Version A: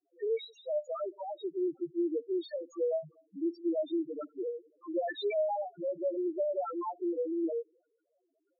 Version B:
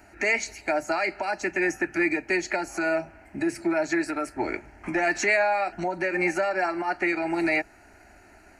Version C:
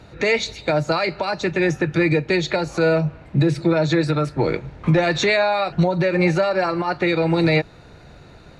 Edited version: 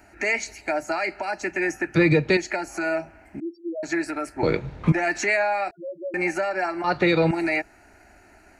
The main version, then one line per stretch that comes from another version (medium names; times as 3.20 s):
B
1.95–2.37 s: from C
3.40–3.83 s: from A
4.43–4.92 s: from C
5.71–6.14 s: from A
6.84–7.31 s: from C